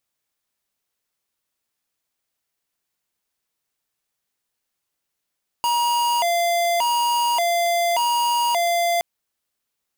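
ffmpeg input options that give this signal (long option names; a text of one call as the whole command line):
ffmpeg -f lavfi -i "aevalsrc='0.1*(2*lt(mod((820.5*t+131.5/0.86*(0.5-abs(mod(0.86*t,1)-0.5))),1),0.5)-1)':duration=3.37:sample_rate=44100" out.wav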